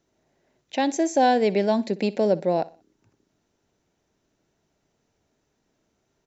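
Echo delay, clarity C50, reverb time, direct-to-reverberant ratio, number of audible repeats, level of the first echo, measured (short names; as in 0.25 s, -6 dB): 61 ms, none, none, none, 2, -19.5 dB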